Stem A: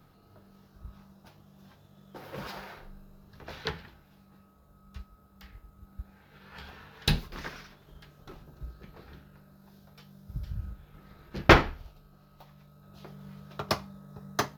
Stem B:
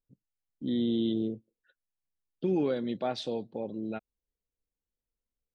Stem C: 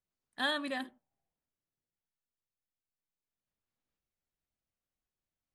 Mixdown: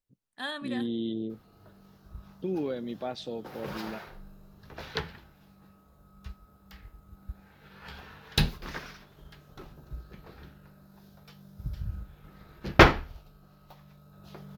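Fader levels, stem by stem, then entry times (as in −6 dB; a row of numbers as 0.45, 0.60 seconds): +1.0, −3.5, −3.5 decibels; 1.30, 0.00, 0.00 seconds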